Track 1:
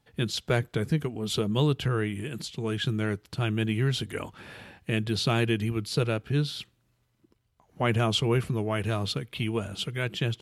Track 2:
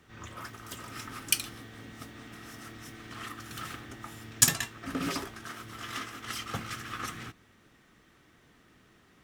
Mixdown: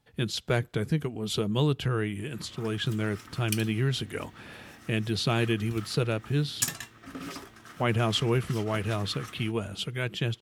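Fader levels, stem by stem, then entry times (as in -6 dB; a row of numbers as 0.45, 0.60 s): -1.0, -6.5 dB; 0.00, 2.20 s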